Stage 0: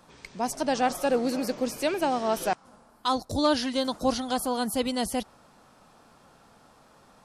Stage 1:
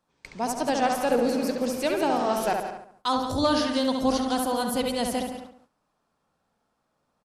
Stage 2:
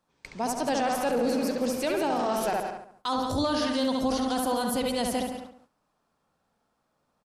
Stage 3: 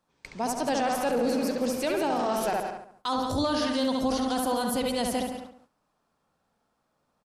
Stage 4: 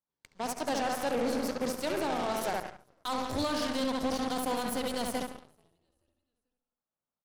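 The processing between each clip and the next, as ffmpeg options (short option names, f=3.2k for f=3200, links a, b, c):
-filter_complex "[0:a]asplit=2[a][b];[b]adelay=69,lowpass=f=2.6k:p=1,volume=-3.5dB,asplit=2[c][d];[d]adelay=69,lowpass=f=2.6k:p=1,volume=0.5,asplit=2[e][f];[f]adelay=69,lowpass=f=2.6k:p=1,volume=0.5,asplit=2[g][h];[h]adelay=69,lowpass=f=2.6k:p=1,volume=0.5,asplit=2[i][j];[j]adelay=69,lowpass=f=2.6k:p=1,volume=0.5,asplit=2[k][l];[l]adelay=69,lowpass=f=2.6k:p=1,volume=0.5,asplit=2[m][n];[n]adelay=69,lowpass=f=2.6k:p=1,volume=0.5[o];[c][e][g][i][k][m][o]amix=inputs=7:normalize=0[p];[a][p]amix=inputs=2:normalize=0,agate=range=-20dB:threshold=-46dB:ratio=16:detection=peak,asplit=2[q][r];[r]aecho=0:1:173:0.282[s];[q][s]amix=inputs=2:normalize=0"
-af "alimiter=limit=-18.5dB:level=0:latency=1:release=10"
-af anull
-filter_complex "[0:a]bandreject=f=2.5k:w=9.6,asplit=4[a][b][c][d];[b]adelay=435,afreqshift=-85,volume=-20dB[e];[c]adelay=870,afreqshift=-170,volume=-27.1dB[f];[d]adelay=1305,afreqshift=-255,volume=-34.3dB[g];[a][e][f][g]amix=inputs=4:normalize=0,aeval=exprs='0.141*(cos(1*acos(clip(val(0)/0.141,-1,1)))-cos(1*PI/2))+0.00398*(cos(3*acos(clip(val(0)/0.141,-1,1)))-cos(3*PI/2))+0.00251*(cos(5*acos(clip(val(0)/0.141,-1,1)))-cos(5*PI/2))+0.0178*(cos(7*acos(clip(val(0)/0.141,-1,1)))-cos(7*PI/2))+0.00794*(cos(8*acos(clip(val(0)/0.141,-1,1)))-cos(8*PI/2))':c=same,volume=-4.5dB"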